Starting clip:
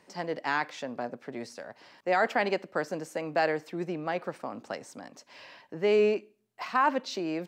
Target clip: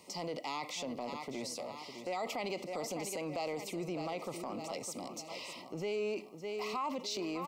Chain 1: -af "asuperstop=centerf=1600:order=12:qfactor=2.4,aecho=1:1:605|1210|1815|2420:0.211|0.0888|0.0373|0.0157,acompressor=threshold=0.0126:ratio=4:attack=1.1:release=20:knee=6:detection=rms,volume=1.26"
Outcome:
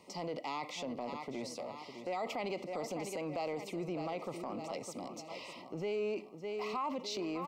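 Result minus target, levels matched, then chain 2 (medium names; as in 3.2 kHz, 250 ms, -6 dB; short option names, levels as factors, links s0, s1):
8 kHz band -5.5 dB
-af "asuperstop=centerf=1600:order=12:qfactor=2.4,highshelf=f=4500:g=11,aecho=1:1:605|1210|1815|2420:0.211|0.0888|0.0373|0.0157,acompressor=threshold=0.0126:ratio=4:attack=1.1:release=20:knee=6:detection=rms,volume=1.26"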